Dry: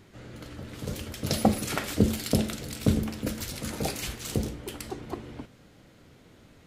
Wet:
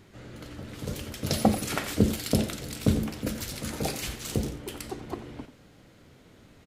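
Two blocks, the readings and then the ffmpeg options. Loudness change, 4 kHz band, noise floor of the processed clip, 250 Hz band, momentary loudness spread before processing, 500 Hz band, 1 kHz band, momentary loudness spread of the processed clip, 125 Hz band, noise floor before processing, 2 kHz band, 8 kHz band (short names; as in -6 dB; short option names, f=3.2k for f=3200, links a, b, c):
0.0 dB, 0.0 dB, -56 dBFS, 0.0 dB, 17 LU, 0.0 dB, 0.0 dB, 17 LU, 0.0 dB, -56 dBFS, 0.0 dB, 0.0 dB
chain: -af "aecho=1:1:89:0.211"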